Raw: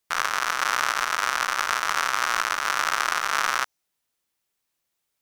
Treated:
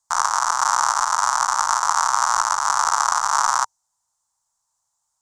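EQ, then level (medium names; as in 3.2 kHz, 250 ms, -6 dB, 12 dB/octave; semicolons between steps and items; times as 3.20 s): FFT filter 110 Hz 0 dB, 390 Hz -21 dB, 920 Hz +11 dB, 2.5 kHz -19 dB, 7.2 kHz +11 dB, 15 kHz -17 dB; +3.0 dB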